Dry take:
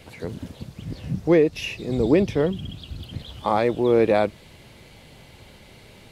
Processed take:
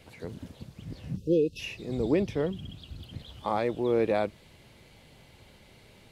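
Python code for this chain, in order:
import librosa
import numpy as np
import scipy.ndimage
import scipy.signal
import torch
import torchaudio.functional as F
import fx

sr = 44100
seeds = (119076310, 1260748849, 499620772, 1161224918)

y = fx.spec_erase(x, sr, start_s=1.17, length_s=0.43, low_hz=560.0, high_hz=2500.0)
y = y * librosa.db_to_amplitude(-7.5)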